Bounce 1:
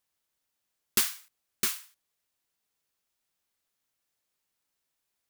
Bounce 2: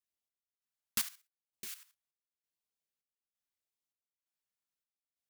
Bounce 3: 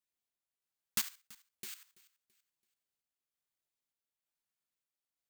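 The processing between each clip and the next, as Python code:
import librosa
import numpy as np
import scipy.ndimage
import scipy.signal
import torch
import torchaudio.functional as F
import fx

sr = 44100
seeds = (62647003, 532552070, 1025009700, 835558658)

y1 = x * (1.0 - 0.9 / 2.0 + 0.9 / 2.0 * np.cos(2.0 * np.pi * 1.1 * (np.arange(len(x)) / sr)))
y1 = fx.level_steps(y1, sr, step_db=13)
y1 = fx.filter_lfo_notch(y1, sr, shape='sine', hz=0.84, low_hz=330.0, high_hz=1700.0, q=2.0)
y1 = y1 * 10.0 ** (-4.0 / 20.0)
y2 = fx.echo_feedback(y1, sr, ms=333, feedback_pct=37, wet_db=-22.0)
y2 = (np.kron(scipy.signal.resample_poly(y2, 1, 4), np.eye(4)[0]) * 4)[:len(y2)]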